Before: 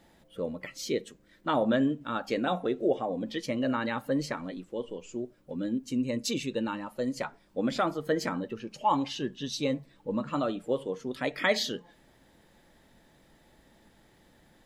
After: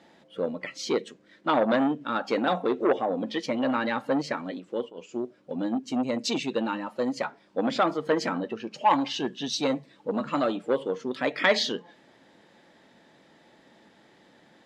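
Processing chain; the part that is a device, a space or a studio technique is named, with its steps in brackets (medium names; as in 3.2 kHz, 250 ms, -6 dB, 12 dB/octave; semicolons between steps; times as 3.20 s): public-address speaker with an overloaded transformer (transformer saturation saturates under 1.1 kHz; band-pass 200–5500 Hz); 9.14–10.57 s: treble shelf 6.6 kHz +7.5 dB; trim +5.5 dB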